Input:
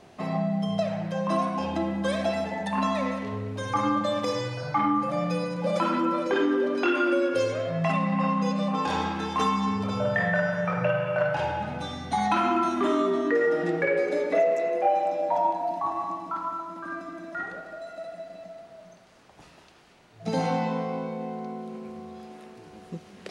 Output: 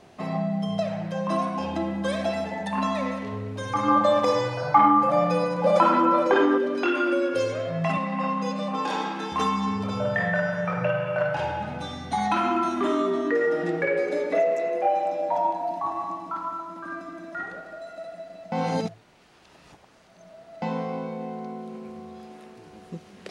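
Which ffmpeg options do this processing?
-filter_complex "[0:a]asettb=1/sr,asplit=3[s0][s1][s2];[s0]atrim=end=3.884[s3];[s1]atrim=start=3.88:end=6.58,asetpts=PTS-STARTPTS,afade=t=in:d=0.004:c=qsin,afade=t=out:st=2.696:d=0.004:c=qsin,equalizer=f=830:t=o:w=1.8:g=10[s4];[s2]atrim=start=6.576[s5];[s3][s4]acrossfade=d=0.004:c1=hsin:c2=qsin[s6];[s6][s5]acrossfade=d=0.004:c1=qsin:c2=hsin,asettb=1/sr,asplit=3[s7][s8][s9];[s7]atrim=end=7.974[s10];[s8]atrim=start=7.97:end=9.32,asetpts=PTS-STARTPTS,afade=t=in:d=0.004:c=qsin,afade=t=out:st=1.346:d=0.004:c=qsin,highpass=f=210:w=0.5412,highpass=f=210:w=1.3066[s11];[s9]atrim=start=9.316[s12];[s10][s11]acrossfade=d=0.004:c1=hsin:c2=qsin[s13];[s13][s12]acrossfade=d=0.004:c1=qsin:c2=hsin,asplit=3[s14][s15][s16];[s14]atrim=end=18.522[s17];[s15]atrim=start=18.518:end=20.622,asetpts=PTS-STARTPTS,areverse[s18];[s16]atrim=start=20.618[s19];[s17][s18]acrossfade=d=0.004:c1=hsin:c2=hsin[s20];[s20][s19]acrossfade=d=0.004:c1=hsin:c2=hsin"

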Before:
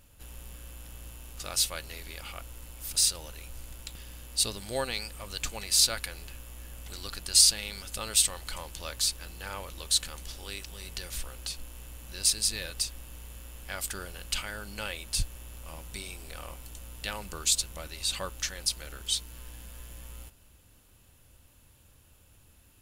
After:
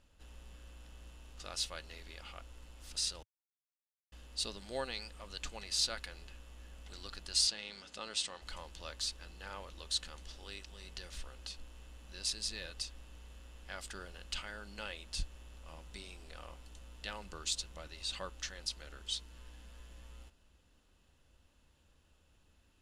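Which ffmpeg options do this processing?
-filter_complex "[0:a]asettb=1/sr,asplit=3[s0][s1][s2];[s0]atrim=end=7.474[s3];[s1]atrim=start=7.47:end=8.42,asetpts=PTS-STARTPTS,afade=t=in:d=0.004:c=qsin,afade=t=out:st=0.946:d=0.004:c=qsin,highpass=140,lowpass=7600[s4];[s2]atrim=start=8.416[s5];[s3][s4]acrossfade=d=0.004:c1=hsin:c2=qsin[s6];[s6][s5]acrossfade=d=0.004:c1=qsin:c2=hsin,asplit=3[s7][s8][s9];[s7]atrim=end=3.23,asetpts=PTS-STARTPTS,afade=t=out:st=3.226:d=0.004:c=hsin[s10];[s8]atrim=start=3.23:end=4.12,asetpts=PTS-STARTPTS,volume=0[s11];[s9]atrim=start=4.12,asetpts=PTS-STARTPTS,afade=t=in:d=0.004:c=hsin[s12];[s10][s11][s12]concat=n=3:v=0:a=1,lowpass=5800,equalizer=f=110:t=o:w=0.32:g=-15,bandreject=f=2300:w=15,volume=0.447"

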